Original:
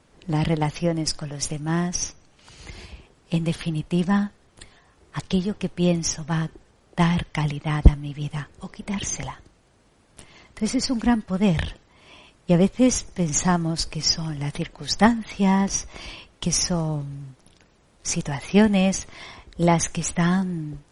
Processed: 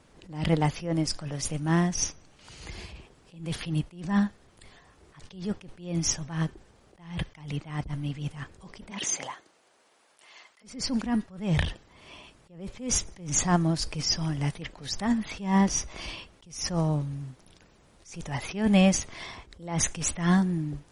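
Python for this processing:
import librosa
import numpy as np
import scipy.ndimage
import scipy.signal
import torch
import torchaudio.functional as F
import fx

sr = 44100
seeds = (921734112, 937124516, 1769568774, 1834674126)

y = fx.highpass(x, sr, hz=fx.line((8.9, 280.0), (10.63, 850.0)), slope=12, at=(8.9, 10.63), fade=0.02)
y = fx.attack_slew(y, sr, db_per_s=120.0)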